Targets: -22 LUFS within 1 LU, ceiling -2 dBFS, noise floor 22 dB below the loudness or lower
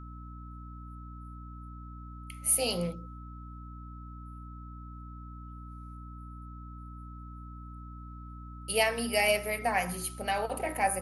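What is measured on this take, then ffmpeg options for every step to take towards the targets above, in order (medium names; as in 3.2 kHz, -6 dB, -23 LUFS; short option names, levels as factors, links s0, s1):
hum 60 Hz; highest harmonic 300 Hz; hum level -42 dBFS; steady tone 1.3 kHz; tone level -50 dBFS; loudness -29.5 LUFS; peak level -11.0 dBFS; loudness target -22.0 LUFS
-> -af "bandreject=f=60:t=h:w=6,bandreject=f=120:t=h:w=6,bandreject=f=180:t=h:w=6,bandreject=f=240:t=h:w=6,bandreject=f=300:t=h:w=6"
-af "bandreject=f=1300:w=30"
-af "volume=2.37"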